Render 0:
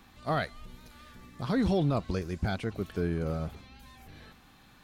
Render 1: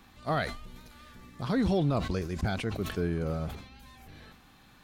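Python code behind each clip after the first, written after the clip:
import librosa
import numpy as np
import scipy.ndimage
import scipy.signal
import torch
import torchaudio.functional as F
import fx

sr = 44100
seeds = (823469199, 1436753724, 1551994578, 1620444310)

y = fx.sustainer(x, sr, db_per_s=83.0)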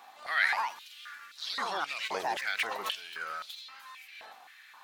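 y = fx.echo_pitch(x, sr, ms=186, semitones=3, count=2, db_per_echo=-6.0)
y = fx.filter_held_highpass(y, sr, hz=3.8, low_hz=740.0, high_hz=3800.0)
y = y * librosa.db_to_amplitude(1.5)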